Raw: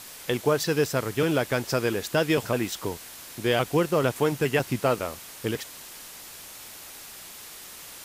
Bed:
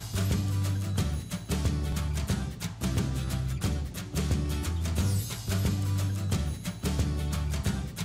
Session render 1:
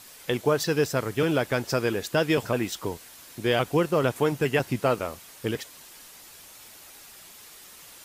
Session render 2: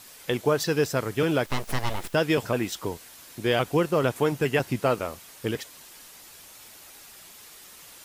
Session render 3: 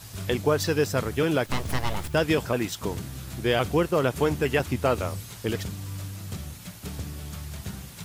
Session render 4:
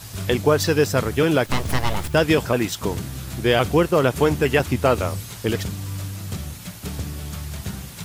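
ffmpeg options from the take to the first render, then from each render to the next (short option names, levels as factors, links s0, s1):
-af "afftdn=nr=6:nf=-44"
-filter_complex "[0:a]asettb=1/sr,asplit=3[s0][s1][s2];[s0]atrim=end=1.464[s3];[s1]atrim=start=1.46:end=2.14,asetpts=PTS-STARTPTS,afade=t=in:d=0.004:c=qsin,afade=t=out:st=0.676:d=0.004:c=qsin,aeval=exprs='abs(val(0))':c=same[s4];[s2]atrim=start=2.136[s5];[s3][s4]acrossfade=d=0.004:c1=hsin:c2=qsin[s6];[s6][s5]acrossfade=d=0.004:c1=qsin:c2=hsin"
-filter_complex "[1:a]volume=0.447[s0];[0:a][s0]amix=inputs=2:normalize=0"
-af "volume=1.88"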